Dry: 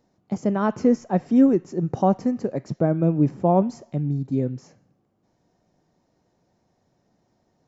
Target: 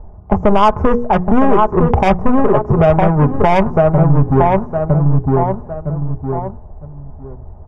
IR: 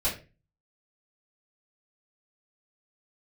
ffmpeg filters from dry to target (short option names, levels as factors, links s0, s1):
-filter_complex "[0:a]adynamicsmooth=sensitivity=1:basefreq=530,equalizer=f=125:t=o:w=1:g=-11,equalizer=f=250:t=o:w=1:g=-12,equalizer=f=500:t=o:w=1:g=-5,equalizer=f=1000:t=o:w=1:g=7,equalizer=f=2000:t=o:w=1:g=-6,equalizer=f=4000:t=o:w=1:g=-11,asplit=2[s0][s1];[s1]adelay=959,lowpass=f=1800:p=1,volume=0.501,asplit=2[s2][s3];[s3]adelay=959,lowpass=f=1800:p=1,volume=0.22,asplit=2[s4][s5];[s5]adelay=959,lowpass=f=1800:p=1,volume=0.22[s6];[s2][s4][s6]amix=inputs=3:normalize=0[s7];[s0][s7]amix=inputs=2:normalize=0,asoftclip=type=tanh:threshold=0.0944,asuperstop=centerf=4100:order=4:qfactor=5.1,bandreject=f=60:t=h:w=6,bandreject=f=120:t=h:w=6,bandreject=f=180:t=h:w=6,bandreject=f=240:t=h:w=6,bandreject=f=300:t=h:w=6,bandreject=f=360:t=h:w=6,bandreject=f=420:t=h:w=6,bandreject=f=480:t=h:w=6,acompressor=threshold=0.00398:ratio=2.5,lowshelf=f=130:t=q:w=1.5:g=14,aecho=1:1:4.8:0.48,alimiter=level_in=53.1:limit=0.891:release=50:level=0:latency=1,volume=0.891"